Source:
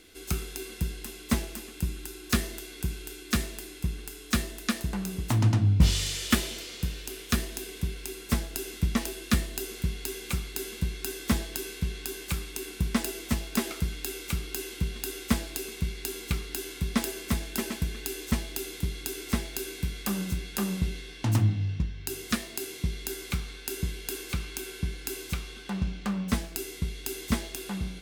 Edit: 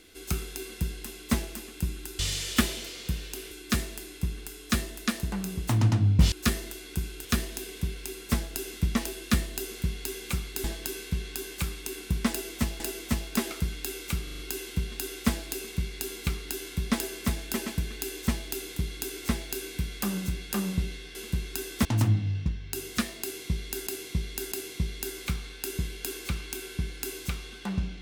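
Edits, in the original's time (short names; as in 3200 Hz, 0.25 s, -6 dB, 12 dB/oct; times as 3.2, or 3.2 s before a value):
2.19–3.12 swap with 5.93–7.25
10.64–11.34 move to 21.19
13–13.5 loop, 2 plays
14.43 stutter 0.04 s, 5 plays
22.56–23.21 loop, 3 plays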